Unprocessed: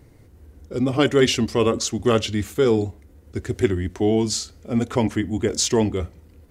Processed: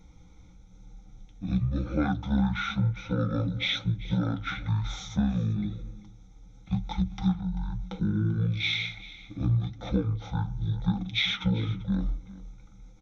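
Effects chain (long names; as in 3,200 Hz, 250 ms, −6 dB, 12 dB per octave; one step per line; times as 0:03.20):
EQ curve with evenly spaced ripples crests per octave 1.4, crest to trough 17 dB
downward compressor 6 to 1, threshold −20 dBFS, peak gain reduction 13.5 dB
flanger 2 Hz, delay 1.8 ms, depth 7.3 ms, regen −52%
on a send: single-tap delay 195 ms −18 dB
on the sum: wrong playback speed 15 ips tape played at 7.5 ips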